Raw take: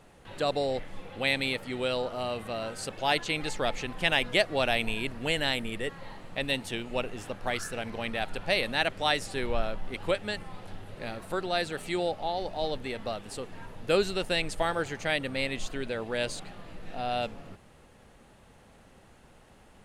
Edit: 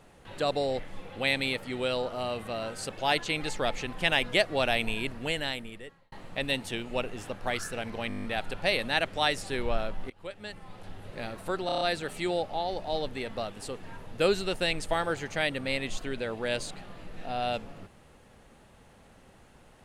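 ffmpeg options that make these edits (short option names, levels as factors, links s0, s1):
-filter_complex "[0:a]asplit=16[s0][s1][s2][s3][s4][s5][s6][s7][s8][s9][s10][s11][s12][s13][s14][s15];[s0]atrim=end=6.12,asetpts=PTS-STARTPTS,afade=t=out:st=5.07:d=1.05[s16];[s1]atrim=start=6.12:end=8.102,asetpts=PTS-STARTPTS,afade=t=in:d=0.004:c=hsin[s17];[s2]atrim=start=8.078:end=8.102[s18];[s3]atrim=start=8.078:end=8.102[s19];[s4]atrim=start=8.078:end=8.102[s20];[s5]atrim=start=8.078:end=8.102[s21];[s6]atrim=start=8.078:end=8.102[s22];[s7]atrim=start=8.078:end=8.102[s23];[s8]atrim=start=8.078:end=8.102[s24];[s9]atrim=start=8.078:end=9.94,asetpts=PTS-STARTPTS,afade=t=out:st=1.858:d=0.004:c=hsin:silence=0.0630957[s25];[s10]atrim=start=9.94:end=11.532,asetpts=PTS-STARTPTS,afade=t=in:d=0.97:silence=0.0630957[s26];[s11]atrim=start=11.498:end=11.532[s27];[s12]atrim=start=11.498:end=11.532[s28];[s13]atrim=start=11.498:end=11.532[s29];[s14]atrim=start=11.498:end=11.532[s30];[s15]atrim=start=11.498[s31];[s16][s17]concat=n=2:v=0:a=1[s32];[s32][s18]acrossfade=d=0.004:c1=hsin:c2=hsin[s33];[s33][s19]acrossfade=d=0.004:c1=hsin:c2=hsin[s34];[s34][s20]acrossfade=d=0.004:c1=hsin:c2=hsin[s35];[s35][s21]acrossfade=d=0.004:c1=hsin:c2=hsin[s36];[s36][s22]acrossfade=d=0.004:c1=hsin:c2=hsin[s37];[s37][s23]acrossfade=d=0.004:c1=hsin:c2=hsin[s38];[s38][s24]acrossfade=d=0.004:c1=hsin:c2=hsin[s39];[s25][s26]concat=n=2:v=0:a=1[s40];[s39][s40]acrossfade=d=0.004:c1=hsin:c2=hsin[s41];[s41][s27]acrossfade=d=0.004:c1=hsin:c2=hsin[s42];[s42][s28]acrossfade=d=0.004:c1=hsin:c2=hsin[s43];[s43][s29]acrossfade=d=0.004:c1=hsin:c2=hsin[s44];[s44][s30]acrossfade=d=0.004:c1=hsin:c2=hsin[s45];[s45][s31]acrossfade=d=0.004:c1=hsin:c2=hsin"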